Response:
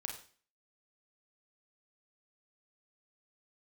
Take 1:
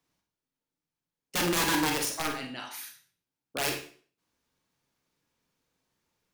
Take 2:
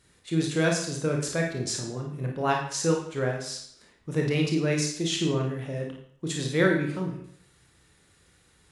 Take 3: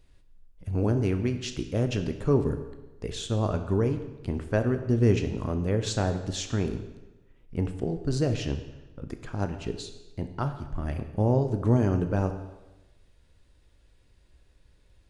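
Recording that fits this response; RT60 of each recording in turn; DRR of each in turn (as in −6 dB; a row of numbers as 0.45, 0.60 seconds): 1; 0.45, 0.65, 1.1 seconds; 2.0, 0.5, 7.0 decibels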